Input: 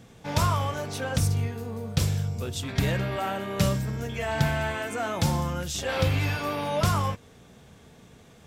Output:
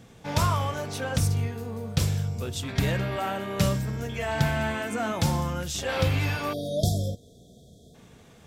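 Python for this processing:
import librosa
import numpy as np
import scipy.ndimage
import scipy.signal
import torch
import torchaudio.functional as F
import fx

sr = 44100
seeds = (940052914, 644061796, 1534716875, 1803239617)

y = fx.peak_eq(x, sr, hz=220.0, db=9.0, octaves=0.28, at=(4.55, 5.12))
y = fx.spec_erase(y, sr, start_s=6.53, length_s=1.42, low_hz=750.0, high_hz=3200.0)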